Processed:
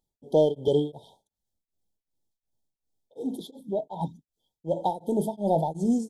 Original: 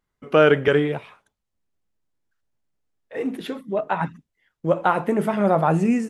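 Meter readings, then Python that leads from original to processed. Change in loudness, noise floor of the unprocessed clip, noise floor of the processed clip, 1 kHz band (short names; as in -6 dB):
-6.5 dB, -80 dBFS, under -85 dBFS, -8.0 dB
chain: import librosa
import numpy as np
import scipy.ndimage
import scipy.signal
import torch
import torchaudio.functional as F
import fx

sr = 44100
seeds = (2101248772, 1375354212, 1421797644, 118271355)

p1 = fx.high_shelf(x, sr, hz=4600.0, db=6.0)
p2 = 10.0 ** (-20.0 / 20.0) * np.tanh(p1 / 10.0 ** (-20.0 / 20.0))
p3 = p1 + (p2 * 10.0 ** (-9.0 / 20.0))
p4 = fx.brickwall_bandstop(p3, sr, low_hz=960.0, high_hz=3100.0)
p5 = p4 * np.abs(np.cos(np.pi * 2.7 * np.arange(len(p4)) / sr))
y = p5 * 10.0 ** (-5.0 / 20.0)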